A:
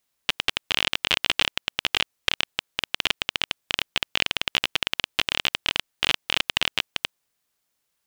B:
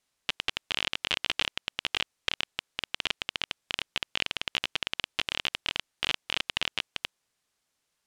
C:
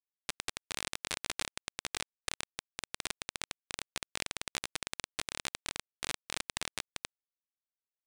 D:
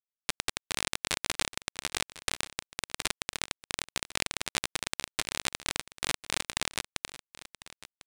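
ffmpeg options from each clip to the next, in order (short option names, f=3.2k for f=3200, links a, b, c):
-af "lowpass=9.6k,alimiter=limit=-9.5dB:level=0:latency=1:release=16"
-af "aeval=exprs='sgn(val(0))*max(abs(val(0))-0.00335,0)':c=same,aeval=exprs='0.335*(cos(1*acos(clip(val(0)/0.335,-1,1)))-cos(1*PI/2))+0.15*(cos(3*acos(clip(val(0)/0.335,-1,1)))-cos(3*PI/2))+0.00376*(cos(6*acos(clip(val(0)/0.335,-1,1)))-cos(6*PI/2))':c=same,volume=-6dB"
-af "acrusher=bits=8:dc=4:mix=0:aa=0.000001,aecho=1:1:1049:0.141,volume=6dB"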